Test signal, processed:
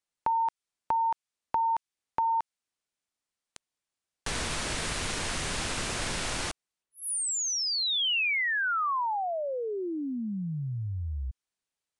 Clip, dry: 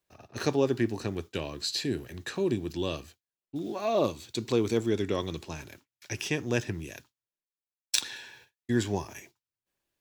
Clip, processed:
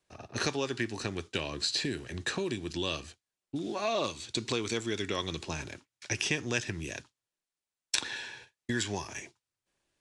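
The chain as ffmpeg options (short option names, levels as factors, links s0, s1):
-filter_complex "[0:a]acrossover=split=1200|2600[s0][s1][s2];[s0]acompressor=threshold=0.0126:ratio=4[s3];[s1]acompressor=threshold=0.0126:ratio=4[s4];[s2]acompressor=threshold=0.0178:ratio=4[s5];[s3][s4][s5]amix=inputs=3:normalize=0,aresample=22050,aresample=44100,volume=1.78"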